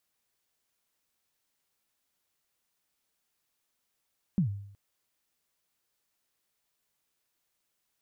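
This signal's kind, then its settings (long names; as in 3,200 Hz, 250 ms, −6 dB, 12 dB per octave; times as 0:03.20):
synth kick length 0.37 s, from 210 Hz, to 100 Hz, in 106 ms, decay 0.69 s, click off, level −20 dB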